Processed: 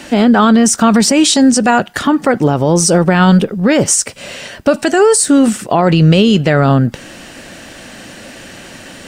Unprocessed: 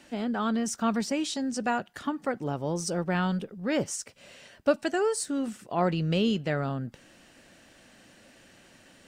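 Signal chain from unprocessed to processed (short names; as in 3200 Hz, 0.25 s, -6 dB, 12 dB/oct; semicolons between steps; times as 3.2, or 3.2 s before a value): dynamic EQ 8700 Hz, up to +5 dB, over -54 dBFS, Q 2; maximiser +23.5 dB; gain -1 dB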